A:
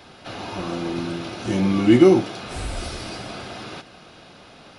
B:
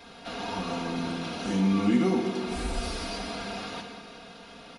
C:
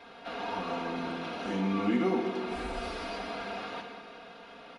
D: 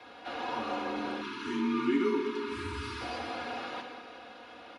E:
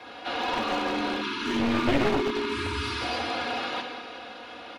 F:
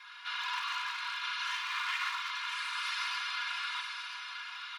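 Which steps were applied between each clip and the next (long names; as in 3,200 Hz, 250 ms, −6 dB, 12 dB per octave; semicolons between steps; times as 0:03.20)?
convolution reverb RT60 1.9 s, pre-delay 29 ms, DRR 4 dB; downward compressor 1.5 to 1, threshold −26 dBFS, peak gain reduction 7 dB; comb filter 4.3 ms, depth 82%; level −4.5 dB
bass and treble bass −10 dB, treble −14 dB
time-frequency box erased 0:01.21–0:03.01, 400–830 Hz; frequency shifter +40 Hz
wavefolder on the positive side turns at −29.5 dBFS; echo ahead of the sound 187 ms −21.5 dB; dynamic equaliser 3,600 Hz, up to +5 dB, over −57 dBFS, Q 1; level +6.5 dB
Butterworth high-pass 1,000 Hz 72 dB per octave; comb filter 2.9 ms, depth 58%; single-tap delay 982 ms −7 dB; level −4.5 dB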